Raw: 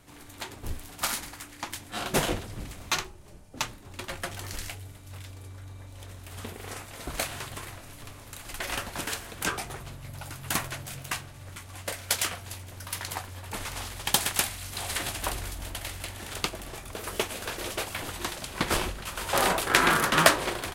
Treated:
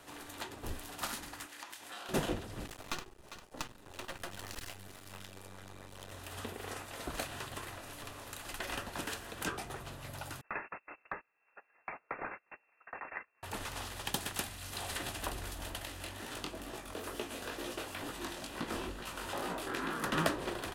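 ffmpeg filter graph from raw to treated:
-filter_complex "[0:a]asettb=1/sr,asplit=3[a][b][c];[a]atrim=end=1.464[d];[b]atrim=start=1.46:end=2.09,asetpts=PTS-STARTPTS,afade=t=in:d=0.004:c=qsin,afade=t=out:st=0.626:d=0.004:c=qsin,highpass=f=620:p=1,asplit=2[e][f];[f]adelay=22,volume=-13.5dB[g];[e][g]amix=inputs=2:normalize=0,atrim=end_sample=27783,acompressor=threshold=-44dB:ratio=4:attack=3.2:release=140:knee=1:detection=peak[h];[c]atrim=start=2.086[i];[d][h]acrossfade=d=0.004:c1=hsin:c2=qsin[j];[j][i]acrossfade=d=0.004:c1=qsin:c2=hsin,asettb=1/sr,asplit=3[k][l][m];[k]atrim=end=2.664[n];[l]atrim=start=2.66:end=6.12,asetpts=PTS-STARTPTS,afade=t=in:d=0.004:c=qsin,afade=t=out:st=3.456:d=0.004:c=qsin,aeval=exprs='max(val(0),0)':c=same,aecho=1:1:400:0.106,atrim=end_sample=152586[o];[m]atrim=start=6.116[p];[n][o]acrossfade=d=0.004:c1=hsin:c2=qsin[q];[q][p]acrossfade=d=0.004:c1=qsin:c2=hsin,asettb=1/sr,asplit=3[r][s][t];[r]atrim=end=10.414[u];[s]atrim=start=10.41:end=13.43,asetpts=PTS-STARTPTS,afade=t=in:d=0.004:c=qsin,afade=t=out:st=3.016:d=0.004:c=qsin,highpass=f=430:p=1,agate=range=-25dB:threshold=-41dB:ratio=16:release=100:detection=peak,lowpass=f=2.4k:t=q:w=0.5098,lowpass=f=2.4k:t=q:w=0.6013,lowpass=f=2.4k:t=q:w=0.9,lowpass=f=2.4k:t=q:w=2.563,afreqshift=-2800[v];[t]atrim=start=13.426[w];[u][v]acrossfade=d=0.004:c1=hsin:c2=qsin[x];[x][w]acrossfade=d=0.004:c1=qsin:c2=hsin,asettb=1/sr,asplit=3[y][z][aa];[y]atrim=end=15.854[ab];[z]atrim=start=15.85:end=20.04,asetpts=PTS-STARTPTS,afade=t=in:d=0.004:c=qsin,afade=t=out:st=4.186:d=0.004:c=qsin,equalizer=f=270:t=o:w=0.65:g=6.5,flanger=delay=16.5:depth=7.1:speed=2.2,acompressor=threshold=-32dB:ratio=2:attack=3.2:release=140:knee=1:detection=peak[ac];[aa]atrim=start=20.036[ad];[ab][ac]acrossfade=d=0.004:c1=hsin:c2=qsin[ae];[ae][ad]acrossfade=d=0.004:c1=qsin:c2=hsin,bass=f=250:g=-13,treble=f=4k:g=-4,bandreject=f=2.2k:w=11,acrossover=split=290[af][ag];[ag]acompressor=threshold=-53dB:ratio=2[ah];[af][ah]amix=inputs=2:normalize=0,volume=5.5dB"

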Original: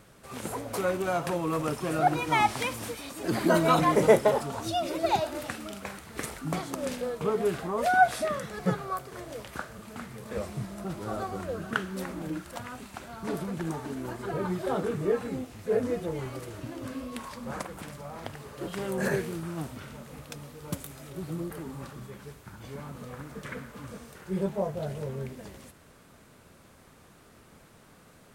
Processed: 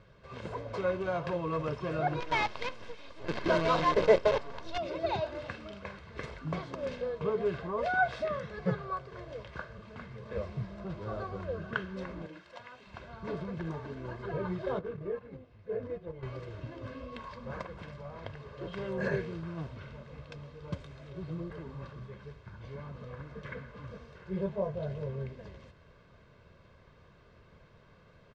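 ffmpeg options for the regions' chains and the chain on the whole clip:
-filter_complex "[0:a]asettb=1/sr,asplit=3[a][b][c];[a]atrim=end=2.204[d];[b]atrim=start=2.2:end=4.78,asetpts=PTS-STARTPTS,afade=t=in:d=0.004:c=qsin,afade=t=out:st=2.576:d=0.004:c=qsin,highpass=210,acrusher=bits=5:dc=4:mix=0:aa=0.000001[e];[c]atrim=start=4.776[f];[d][e]acrossfade=d=0.004:c1=hsin:c2=qsin[g];[g][f]acrossfade=d=0.004:c1=qsin:c2=hsin,asettb=1/sr,asplit=3[h][i][j];[h]atrim=end=12.264[k];[i]atrim=start=12.26:end=12.87,asetpts=PTS-STARTPTS,afade=t=in:d=0.004:c=qsin,afade=t=out:st=0.606:d=0.004:c=qsin,highpass=f=750:p=1,equalizer=f=1.3k:t=o:w=0.65:g=-4[l];[j]atrim=start=12.866[m];[k][l]acrossfade=d=0.004:c1=hsin:c2=qsin[n];[n][m]acrossfade=d=0.004:c1=qsin:c2=hsin,asettb=1/sr,asplit=3[o][p][q];[o]atrim=end=14.794[r];[p]atrim=start=14.79:end=16.23,asetpts=PTS-STARTPTS,afade=t=in:d=0.004:c=qsin,afade=t=out:st=1.436:d=0.004:c=qsin,aemphasis=mode=reproduction:type=50fm,agate=range=-10dB:threshold=-32dB:ratio=16:release=100:detection=peak,acompressor=threshold=-40dB:ratio=1.5:attack=3.2:release=140:knee=1:detection=peak[s];[q]atrim=start=16.226[t];[r][s]acrossfade=d=0.004:c1=hsin:c2=qsin[u];[u][t]acrossfade=d=0.004:c1=qsin:c2=hsin,lowpass=f=5.1k:w=0.5412,lowpass=f=5.1k:w=1.3066,bass=f=250:g=4,treble=f=4k:g=-5,aecho=1:1:1.9:0.52,volume=-5.5dB"

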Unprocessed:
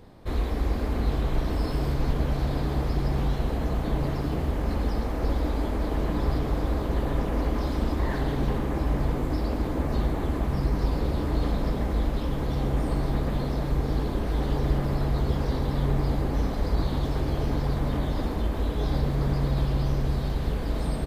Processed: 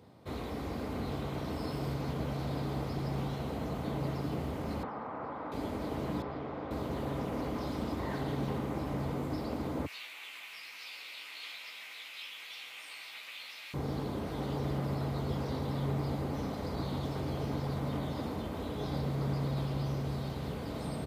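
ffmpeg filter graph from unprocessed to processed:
-filter_complex "[0:a]asettb=1/sr,asplit=3[a][b][c];[a]atrim=end=4.834[d];[b]atrim=start=4.83:end=5.52,asetpts=PTS-STARTPTS,afade=t=in:d=0.004:c=qsin,afade=t=out:st=0.686:d=0.004:c=qsin,equalizer=f=1.1k:t=o:w=1.7:g=12.5,acrossover=split=180|790[e][f][g];[e]acompressor=threshold=-32dB:ratio=4[h];[f]acompressor=threshold=-38dB:ratio=4[i];[g]acompressor=threshold=-37dB:ratio=4[j];[h][i][j]amix=inputs=3:normalize=0,highpass=130,lowpass=2k[k];[c]atrim=start=5.516[l];[d][k]acrossfade=d=0.004:c1=hsin:c2=qsin[m];[m][l]acrossfade=d=0.004:c1=qsin:c2=hsin,asettb=1/sr,asplit=3[n][o][p];[n]atrim=end=6.224[q];[o]atrim=start=6.22:end=6.71,asetpts=PTS-STARTPTS,afade=t=in:d=0.004:c=qsin,afade=t=out:st=0.486:d=0.004:c=qsin,lowpass=2.3k,lowshelf=f=210:g=-11.5[r];[p]atrim=start=6.706[s];[q][r]acrossfade=d=0.004:c1=hsin:c2=qsin[t];[t][s]acrossfade=d=0.004:c1=qsin:c2=hsin,asettb=1/sr,asplit=3[u][v][w];[u]atrim=end=9.864[x];[v]atrim=start=9.86:end=13.74,asetpts=PTS-STARTPTS,afade=t=in:d=0.004:c=qsin,afade=t=out:st=3.876:d=0.004:c=qsin,highpass=f=2.5k:t=q:w=4,asplit=2[y][z];[z]adelay=16,volume=-5dB[aa];[y][aa]amix=inputs=2:normalize=0,atrim=end_sample=171108[ab];[w]atrim=start=13.736[ac];[x][ab]acrossfade=d=0.004:c1=hsin:c2=qsin[ad];[ad][ac]acrossfade=d=0.004:c1=qsin:c2=hsin,highpass=f=88:w=0.5412,highpass=f=88:w=1.3066,equalizer=f=350:w=7.2:g=-3,bandreject=f=1.7k:w=11,volume=-5.5dB"

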